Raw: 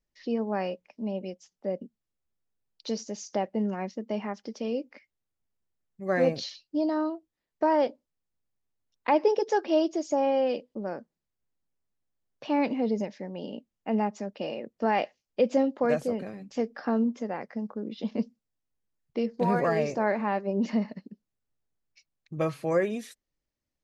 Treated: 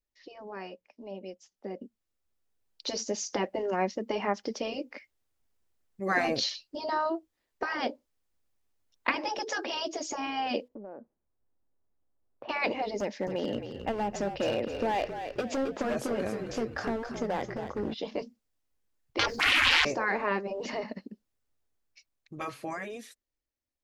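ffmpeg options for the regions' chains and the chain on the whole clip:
-filter_complex "[0:a]asettb=1/sr,asplit=3[a][b][c];[a]atrim=end=10.684[d];[b]atrim=start=10.68:end=12.49,asetpts=PTS-STARTPTS,afade=t=in:d=0.004:c=qsin,afade=t=out:st=1.806:d=0.004:c=qsin,lowpass=1k,acompressor=threshold=-45dB:ratio=8:attack=3.2:release=140:knee=1:detection=peak[e];[c]atrim=start=12.486[f];[d][e]acrossfade=d=0.004:c1=hsin:c2=qsin[g];[g][f]acrossfade=d=0.004:c1=qsin:c2=hsin,asettb=1/sr,asplit=3[h][i][j];[h]atrim=end=13.004[k];[i]atrim=start=13:end=17.94,asetpts=PTS-STARTPTS,afade=t=in:d=0.004:c=qsin,afade=t=out:st=4.936:d=0.004:c=qsin,acompressor=threshold=-28dB:ratio=8:attack=3.2:release=140:knee=1:detection=peak,asoftclip=type=hard:threshold=-29.5dB,asplit=6[l][m][n][o][p][q];[m]adelay=267,afreqshift=-51,volume=-8dB[r];[n]adelay=534,afreqshift=-102,volume=-15.7dB[s];[o]adelay=801,afreqshift=-153,volume=-23.5dB[t];[p]adelay=1068,afreqshift=-204,volume=-31.2dB[u];[q]adelay=1335,afreqshift=-255,volume=-39dB[v];[l][r][s][t][u][v]amix=inputs=6:normalize=0,atrim=end_sample=217854[w];[j]atrim=start=17.936[x];[k][w]acrossfade=d=0.004:c1=hsin:c2=qsin[y];[y][x]acrossfade=d=0.004:c1=qsin:c2=hsin,asettb=1/sr,asplit=3[z][aa][ab];[z]atrim=end=19.194[ac];[aa]atrim=start=19.19:end=19.85,asetpts=PTS-STARTPTS,afade=t=in:d=0.004:c=qsin,afade=t=out:st=0.656:d=0.004:c=qsin,bass=f=250:g=13,treble=f=4k:g=6,aeval=exprs='0.355*sin(PI/2*4.47*val(0)/0.355)':c=same,acrossover=split=4800[ad][ae];[ae]acompressor=threshold=-44dB:ratio=4:attack=1:release=60[af];[ad][af]amix=inputs=2:normalize=0[ag];[ab]atrim=start=19.846[ah];[ac][ag]acrossfade=d=0.004:c1=hsin:c2=qsin[ai];[ai][ah]acrossfade=d=0.004:c1=qsin:c2=hsin,afftfilt=real='re*lt(hypot(re,im),0.224)':imag='im*lt(hypot(re,im),0.224)':win_size=1024:overlap=0.75,equalizer=f=160:w=2.6:g=-11,dynaudnorm=f=340:g=13:m=13dB,volume=-6dB"

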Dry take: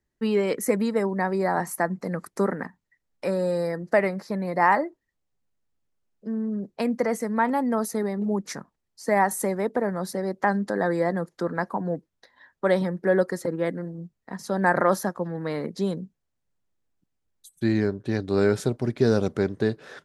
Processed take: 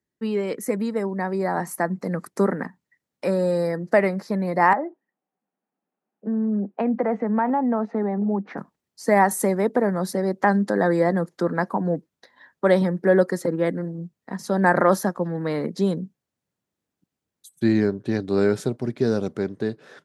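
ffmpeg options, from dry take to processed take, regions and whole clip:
-filter_complex "[0:a]asettb=1/sr,asplit=3[a][b][c];[a]atrim=end=4.734[d];[b]atrim=start=4.73:end=8.58,asetpts=PTS-STARTPTS,afade=t=in:d=0.004:c=qsin,afade=t=out:st=3.846:d=0.004:c=qsin,highpass=f=200:w=0.5412,highpass=f=200:w=1.3066,equalizer=f=200:t=q:w=4:g=4,equalizer=f=770:t=q:w=4:g=9,equalizer=f=2.1k:t=q:w=4:g=-4,lowpass=f=2.4k:w=0.5412,lowpass=f=2.4k:w=1.3066,acompressor=threshold=-29dB:ratio=2:attack=3.2:release=140:knee=1:detection=peak[e];[c]atrim=start=8.576[f];[d][e]acrossfade=d=0.004:c1=hsin:c2=qsin[g];[g][f]acrossfade=d=0.004:c1=qsin:c2=hsin,highpass=150,lowshelf=f=280:g=6,dynaudnorm=f=170:g=21:m=11.5dB,volume=-4dB"

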